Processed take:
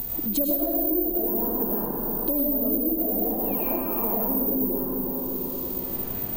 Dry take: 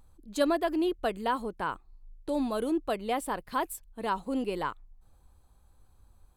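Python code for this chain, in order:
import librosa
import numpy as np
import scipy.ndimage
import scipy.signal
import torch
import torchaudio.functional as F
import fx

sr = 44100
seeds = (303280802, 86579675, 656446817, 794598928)

p1 = fx.spec_paint(x, sr, seeds[0], shape='fall', start_s=3.17, length_s=1.29, low_hz=240.0, high_hz=5800.0, level_db=-41.0)
p2 = fx.env_lowpass_down(p1, sr, base_hz=640.0, full_db=-29.5)
p3 = (np.kron(p2[::3], np.eye(3)[0]) * 3)[:len(p2)]
p4 = fx.dmg_noise_colour(p3, sr, seeds[1], colour='pink', level_db=-72.0)
p5 = fx.peak_eq(p4, sr, hz=1300.0, db=-10.5, octaves=1.7)
p6 = p5 + fx.echo_feedback(p5, sr, ms=354, feedback_pct=33, wet_db=-15, dry=0)
p7 = fx.rev_freeverb(p6, sr, rt60_s=1.8, hf_ratio=0.7, predelay_ms=65, drr_db=-8.0)
p8 = fx.band_squash(p7, sr, depth_pct=100)
y = p8 * librosa.db_to_amplitude(-3.0)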